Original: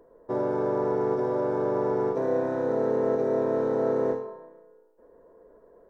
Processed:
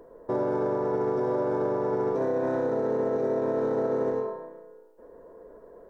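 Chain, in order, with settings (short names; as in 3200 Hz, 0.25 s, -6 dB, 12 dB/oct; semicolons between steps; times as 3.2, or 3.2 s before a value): limiter -25.5 dBFS, peak gain reduction 11.5 dB; gain +6 dB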